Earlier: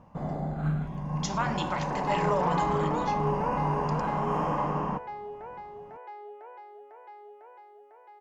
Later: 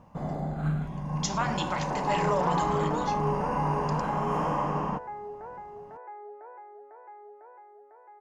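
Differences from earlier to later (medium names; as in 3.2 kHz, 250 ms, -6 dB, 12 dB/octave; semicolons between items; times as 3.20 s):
second sound: add steep low-pass 1.9 kHz 36 dB/octave; master: add treble shelf 5 kHz +7 dB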